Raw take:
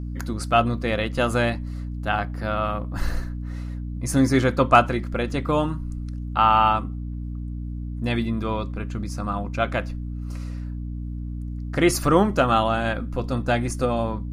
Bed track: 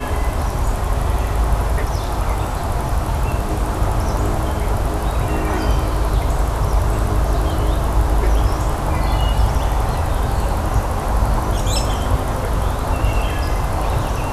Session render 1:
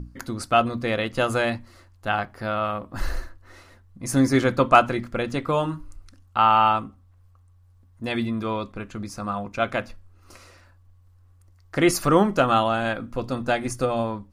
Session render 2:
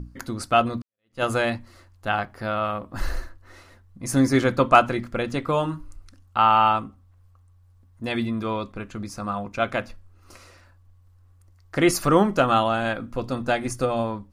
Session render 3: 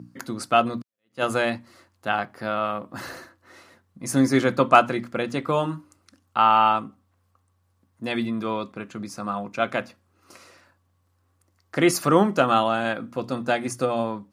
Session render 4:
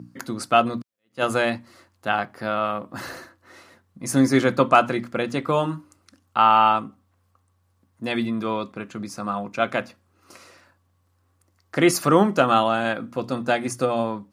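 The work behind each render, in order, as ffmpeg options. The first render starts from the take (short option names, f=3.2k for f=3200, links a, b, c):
-af "bandreject=f=60:t=h:w=6,bandreject=f=120:t=h:w=6,bandreject=f=180:t=h:w=6,bandreject=f=240:t=h:w=6,bandreject=f=300:t=h:w=6"
-filter_complex "[0:a]asplit=2[a][b];[a]atrim=end=0.82,asetpts=PTS-STARTPTS,afade=t=out:st=0.816:d=0.004:c=hsin[c];[b]atrim=start=0.82,asetpts=PTS-STARTPTS,afade=t=in:d=0.41:c=exp[d];[c][d]concat=n=2:v=0:a=1"
-af "highpass=f=130:w=0.5412,highpass=f=130:w=1.3066"
-af "volume=1.5dB,alimiter=limit=-3dB:level=0:latency=1"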